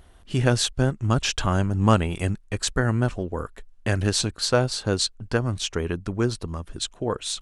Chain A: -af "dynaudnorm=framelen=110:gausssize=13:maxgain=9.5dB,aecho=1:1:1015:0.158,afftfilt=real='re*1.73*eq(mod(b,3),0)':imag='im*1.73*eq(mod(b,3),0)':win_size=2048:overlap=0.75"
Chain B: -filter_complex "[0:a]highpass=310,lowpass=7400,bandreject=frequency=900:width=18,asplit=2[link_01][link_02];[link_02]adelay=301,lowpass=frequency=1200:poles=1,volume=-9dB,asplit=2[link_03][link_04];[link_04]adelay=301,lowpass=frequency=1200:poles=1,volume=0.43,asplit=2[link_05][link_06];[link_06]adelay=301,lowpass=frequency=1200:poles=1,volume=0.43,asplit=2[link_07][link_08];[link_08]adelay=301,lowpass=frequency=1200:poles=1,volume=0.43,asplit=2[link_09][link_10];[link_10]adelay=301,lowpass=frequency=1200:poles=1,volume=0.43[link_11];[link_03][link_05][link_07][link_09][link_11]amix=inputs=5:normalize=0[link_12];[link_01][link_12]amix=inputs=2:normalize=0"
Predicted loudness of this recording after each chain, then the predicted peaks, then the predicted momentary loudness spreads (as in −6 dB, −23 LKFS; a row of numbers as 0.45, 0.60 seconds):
−23.5, −27.5 LKFS; −3.5, −5.0 dBFS; 9, 9 LU